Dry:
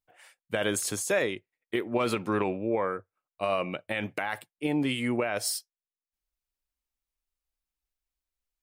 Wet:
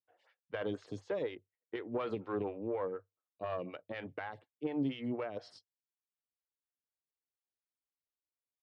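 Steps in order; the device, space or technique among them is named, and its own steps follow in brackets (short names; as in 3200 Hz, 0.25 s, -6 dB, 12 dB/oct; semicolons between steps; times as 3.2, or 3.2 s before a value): vibe pedal into a guitar amplifier (photocell phaser 4.1 Hz; tube stage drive 19 dB, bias 0.35; speaker cabinet 92–4400 Hz, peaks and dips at 98 Hz +10 dB, 140 Hz +6 dB, 280 Hz +5 dB, 460 Hz +6 dB, 2400 Hz -5 dB); gain -8 dB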